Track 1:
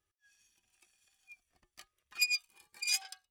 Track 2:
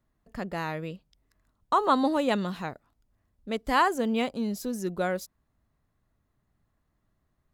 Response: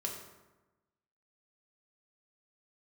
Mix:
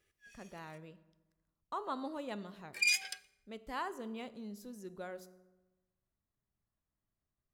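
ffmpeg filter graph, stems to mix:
-filter_complex "[0:a]acompressor=threshold=0.0178:ratio=6,equalizer=f=500:t=o:w=1:g=10,equalizer=f=1000:t=o:w=1:g=-11,equalizer=f=2000:t=o:w=1:g=11,volume=1.41,asplit=3[s0][s1][s2];[s0]atrim=end=0.78,asetpts=PTS-STARTPTS,afade=t=out:st=0.776:d=0.004:c=hsin[s3];[s1]atrim=start=0.78:end=2.73,asetpts=PTS-STARTPTS,volume=0[s4];[s2]atrim=start=2.73,asetpts=PTS-STARTPTS,afade=t=in:d=0.004:c=hsin[s5];[s3][s4][s5]concat=n=3:v=0:a=1,asplit=2[s6][s7];[s7]volume=0.224[s8];[1:a]volume=0.119,asplit=2[s9][s10];[s10]volume=0.335[s11];[2:a]atrim=start_sample=2205[s12];[s8][s11]amix=inputs=2:normalize=0[s13];[s13][s12]afir=irnorm=-1:irlink=0[s14];[s6][s9][s14]amix=inputs=3:normalize=0"

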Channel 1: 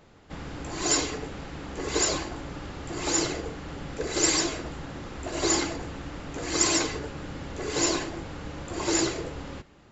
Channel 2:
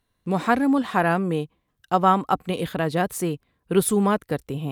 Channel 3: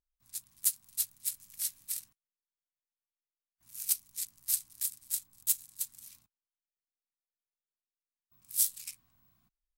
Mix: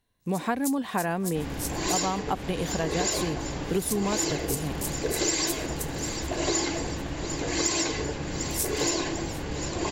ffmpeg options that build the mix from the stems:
-filter_complex "[0:a]acontrast=57,adelay=1050,volume=0.794,asplit=2[s0][s1];[s1]volume=0.178[s2];[1:a]volume=0.794,asplit=2[s3][s4];[s4]volume=0.0668[s5];[2:a]equalizer=f=6300:t=o:w=0.93:g=8,volume=0.668,asplit=2[s6][s7];[s7]volume=0.0708[s8];[s2][s5][s8]amix=inputs=3:normalize=0,aecho=0:1:747|1494|2241|2988|3735|4482|5229:1|0.51|0.26|0.133|0.0677|0.0345|0.0176[s9];[s0][s3][s6][s9]amix=inputs=4:normalize=0,equalizer=f=1300:w=6.5:g=-9,acompressor=threshold=0.0708:ratio=6"

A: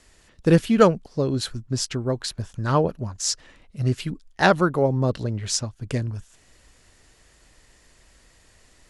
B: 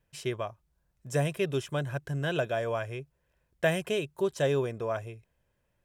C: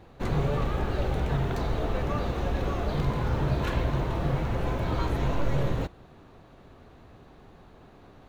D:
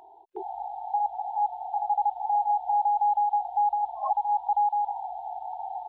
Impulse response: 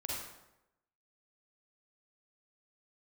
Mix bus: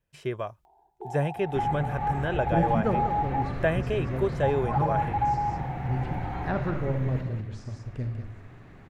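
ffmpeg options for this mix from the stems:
-filter_complex "[0:a]aemphasis=mode=reproduction:type=bsi,adelay=2050,volume=0.141,asplit=3[s0][s1][s2];[s1]volume=0.501[s3];[s2]volume=0.398[s4];[1:a]volume=1.19[s5];[2:a]equalizer=f=125:t=o:w=1:g=9,equalizer=f=250:t=o:w=1:g=4,equalizer=f=2000:t=o:w=1:g=12,equalizer=f=4000:t=o:w=1:g=-4,acompressor=threshold=0.0316:ratio=3,adelay=1350,volume=0.447,asplit=3[s6][s7][s8];[s7]volume=0.501[s9];[s8]volume=0.668[s10];[3:a]adelay=650,volume=0.562,asplit=3[s11][s12][s13];[s11]atrim=end=3.42,asetpts=PTS-STARTPTS,afade=t=out:st=3.416:d=0.004:c=hsin[s14];[s12]atrim=start=3.42:end=4.43,asetpts=PTS-STARTPTS,volume=0[s15];[s13]atrim=start=4.43,asetpts=PTS-STARTPTS,afade=t=in:d=0.004:c=hsin[s16];[s14][s15][s16]concat=n=3:v=0:a=1,asplit=2[s17][s18];[s18]volume=0.282[s19];[4:a]atrim=start_sample=2205[s20];[s3][s9][s19]amix=inputs=3:normalize=0[s21];[s21][s20]afir=irnorm=-1:irlink=0[s22];[s4][s10]amix=inputs=2:normalize=0,aecho=0:1:193:1[s23];[s0][s5][s6][s17][s22][s23]amix=inputs=6:normalize=0,acrossover=split=2600[s24][s25];[s25]acompressor=threshold=0.00178:ratio=4:attack=1:release=60[s26];[s24][s26]amix=inputs=2:normalize=0,agate=range=0.447:threshold=0.00224:ratio=16:detection=peak"

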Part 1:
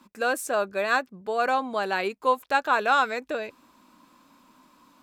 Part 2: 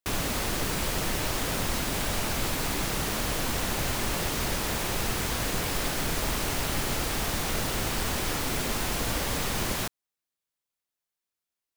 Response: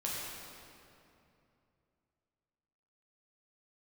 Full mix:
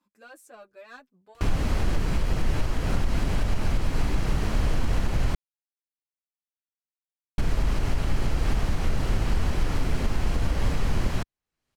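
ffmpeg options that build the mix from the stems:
-filter_complex "[0:a]asoftclip=type=tanh:threshold=0.126,asplit=2[s0][s1];[s1]adelay=7.3,afreqshift=0.65[s2];[s0][s2]amix=inputs=2:normalize=1,volume=0.141[s3];[1:a]acompressor=mode=upward:threshold=0.02:ratio=2.5,aemphasis=mode=reproduction:type=bsi,bandreject=f=3600:w=18,adelay=1350,volume=0.891,asplit=3[s4][s5][s6];[s4]atrim=end=5.35,asetpts=PTS-STARTPTS,afade=t=out:st=5.346:d=0.004:c=hsin[s7];[s5]atrim=start=5.35:end=7.38,asetpts=PTS-STARTPTS,volume=0[s8];[s6]atrim=start=7.38,asetpts=PTS-STARTPTS,afade=t=in:d=0.004:c=hsin[s9];[s7][s8][s9]concat=n=3:v=0:a=1[s10];[s3][s10]amix=inputs=2:normalize=0,alimiter=limit=0.2:level=0:latency=1:release=154"

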